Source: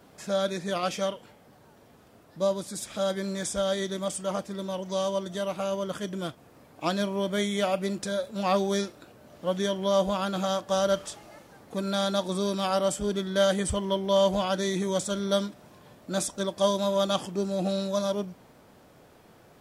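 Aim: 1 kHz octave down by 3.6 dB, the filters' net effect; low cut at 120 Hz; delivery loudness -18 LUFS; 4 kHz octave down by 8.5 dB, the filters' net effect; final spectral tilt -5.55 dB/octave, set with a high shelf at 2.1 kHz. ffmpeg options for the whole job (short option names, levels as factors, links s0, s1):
-af "highpass=120,equalizer=f=1000:t=o:g=-3.5,highshelf=f=2100:g=-4.5,equalizer=f=4000:t=o:g=-6.5,volume=4.22"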